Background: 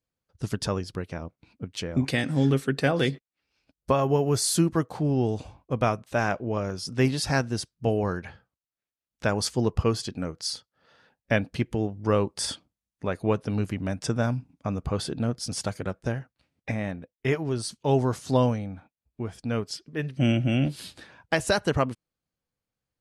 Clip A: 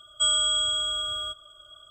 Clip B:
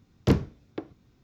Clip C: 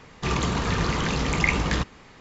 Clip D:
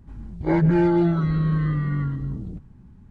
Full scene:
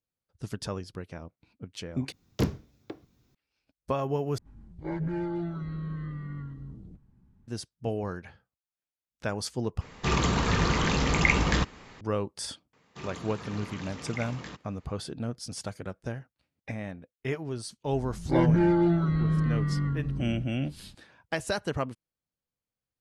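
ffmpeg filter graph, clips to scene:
-filter_complex "[4:a]asplit=2[s0][s1];[3:a]asplit=2[s2][s3];[0:a]volume=0.473[s4];[2:a]highshelf=f=5800:g=12[s5];[s3]highpass=120[s6];[s4]asplit=4[s7][s8][s9][s10];[s7]atrim=end=2.124[s11];[s5]atrim=end=1.23,asetpts=PTS-STARTPTS,volume=0.531[s12];[s8]atrim=start=3.346:end=4.384[s13];[s0]atrim=end=3.1,asetpts=PTS-STARTPTS,volume=0.211[s14];[s9]atrim=start=7.476:end=9.814[s15];[s2]atrim=end=2.2,asetpts=PTS-STARTPTS,volume=0.944[s16];[s10]atrim=start=12.006[s17];[s6]atrim=end=2.2,asetpts=PTS-STARTPTS,volume=0.158,afade=t=in:d=0.004:c=hsin,afade=t=out:st=2.196:d=0.004:c=hsin,adelay=12730[s18];[s1]atrim=end=3.1,asetpts=PTS-STARTPTS,volume=0.631,afade=t=in:d=0.004:c=hsin,afade=t=out:st=3.096:d=0.004:c=hsin,adelay=17850[s19];[s11][s12]acrossfade=d=0.004:c1=hsin:c2=hsin[s20];[s20][s13]acrossfade=d=0.004:c1=hsin:c2=hsin[s21];[s21][s14]acrossfade=d=0.004:c1=hsin:c2=hsin[s22];[s22][s15]acrossfade=d=0.004:c1=hsin:c2=hsin[s23];[s23][s16]acrossfade=d=0.004:c1=hsin:c2=hsin[s24];[s24][s17]acrossfade=d=0.004:c1=hsin:c2=hsin[s25];[s25][s18][s19]amix=inputs=3:normalize=0"

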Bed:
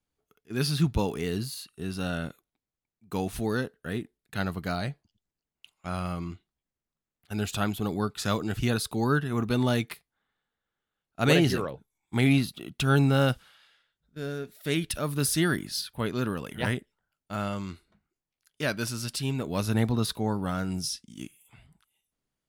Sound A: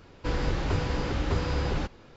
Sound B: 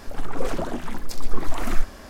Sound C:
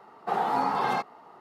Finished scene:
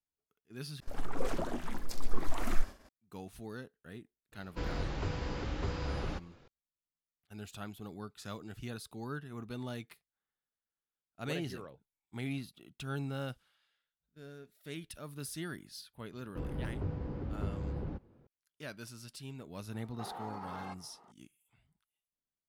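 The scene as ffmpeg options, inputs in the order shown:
-filter_complex "[1:a]asplit=2[s0][s1];[0:a]volume=0.158[s2];[2:a]agate=range=0.0224:threshold=0.0178:ratio=3:release=100:detection=peak[s3];[s1]bandpass=f=150:t=q:w=0.5:csg=0[s4];[3:a]alimiter=level_in=1.12:limit=0.0631:level=0:latency=1:release=83,volume=0.891[s5];[s2]asplit=2[s6][s7];[s6]atrim=end=0.804[s8];[s3]atrim=end=2.09,asetpts=PTS-STARTPTS,volume=0.398[s9];[s7]atrim=start=2.886[s10];[s0]atrim=end=2.16,asetpts=PTS-STARTPTS,volume=0.376,afade=t=in:d=0.004:c=hsin,afade=t=out:st=2.156:d=0.004:c=hsin,adelay=4320[s11];[s4]atrim=end=2.16,asetpts=PTS-STARTPTS,volume=0.447,afade=t=in:d=0.004:c=hsin,afade=t=out:st=2.156:d=0.004:c=hsin,adelay=16110[s12];[s5]atrim=end=1.4,asetpts=PTS-STARTPTS,volume=0.282,afade=t=in:d=0.004:c=hsin,afade=t=out:st=1.396:d=0.004:c=hsin,adelay=869652S[s13];[s8][s9]acrossfade=d=0.004:c1=hsin:c2=hsin[s14];[s14][s10]acrossfade=d=0.004:c1=hsin:c2=hsin[s15];[s15][s11][s12][s13]amix=inputs=4:normalize=0"

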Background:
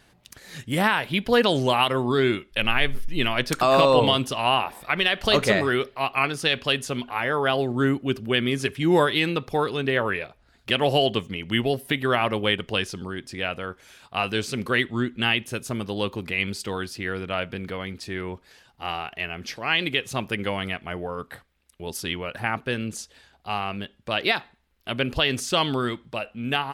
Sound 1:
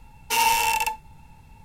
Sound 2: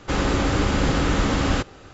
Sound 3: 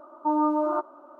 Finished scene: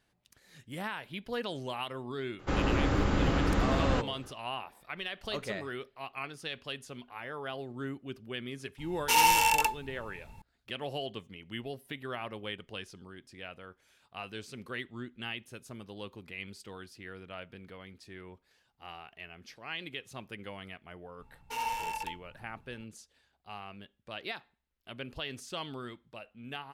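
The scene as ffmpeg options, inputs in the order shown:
-filter_complex "[1:a]asplit=2[s0][s1];[0:a]volume=0.15[s2];[2:a]highshelf=f=3500:g=-9.5[s3];[s1]highshelf=f=2800:g=-10.5[s4];[s3]atrim=end=1.93,asetpts=PTS-STARTPTS,volume=0.473,afade=t=in:d=0.004:c=hsin,afade=t=out:st=1.926:d=0.004:c=hsin,adelay=2390[s5];[s0]atrim=end=1.64,asetpts=PTS-STARTPTS,volume=0.75,afade=t=in:d=0.004:c=hsin,afade=t=out:st=1.636:d=0.004:c=hsin,adelay=8780[s6];[s4]atrim=end=1.64,asetpts=PTS-STARTPTS,volume=0.266,afade=t=in:d=0.004:c=hsin,afade=t=out:st=1.636:d=0.004:c=hsin,adelay=21200[s7];[s2][s5][s6][s7]amix=inputs=4:normalize=0"

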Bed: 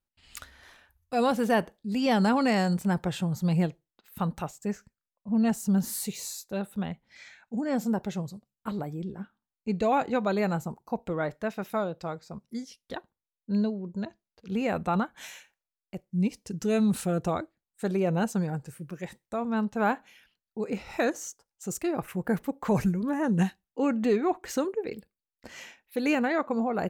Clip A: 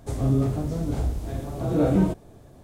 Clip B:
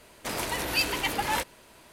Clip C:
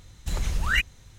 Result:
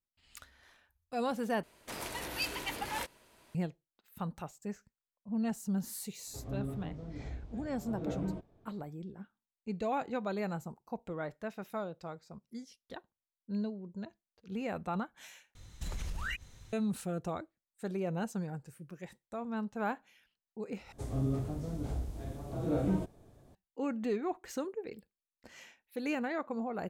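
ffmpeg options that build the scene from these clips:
-filter_complex "[1:a]asplit=2[s0][s1];[0:a]volume=0.355[s2];[s0]lowpass=3500[s3];[3:a]acompressor=threshold=0.0316:ratio=6:attack=3.2:release=140:knee=1:detection=peak[s4];[s2]asplit=4[s5][s6][s7][s8];[s5]atrim=end=1.634[s9];[2:a]atrim=end=1.92,asetpts=PTS-STARTPTS,volume=0.335[s10];[s6]atrim=start=3.546:end=15.554[s11];[s4]atrim=end=1.18,asetpts=PTS-STARTPTS,volume=0.631[s12];[s7]atrim=start=16.726:end=20.924[s13];[s1]atrim=end=2.63,asetpts=PTS-STARTPTS,volume=0.299[s14];[s8]atrim=start=23.546[s15];[s3]atrim=end=2.63,asetpts=PTS-STARTPTS,volume=0.15,afade=t=in:d=0.004:c=hsin,afade=t=out:st=2.626:d=0.004:c=hsin,adelay=6270[s16];[s9][s10]acrossfade=d=0.004:c1=hsin:c2=hsin[s17];[s17][s11]acrossfade=d=0.004:c1=hsin:c2=hsin[s18];[s18][s12]acrossfade=d=0.004:c1=hsin:c2=hsin[s19];[s19][s13]acrossfade=d=0.004:c1=hsin:c2=hsin[s20];[s20][s14]acrossfade=d=0.004:c1=hsin:c2=hsin[s21];[s21][s15]acrossfade=d=0.004:c1=hsin:c2=hsin[s22];[s22][s16]amix=inputs=2:normalize=0"

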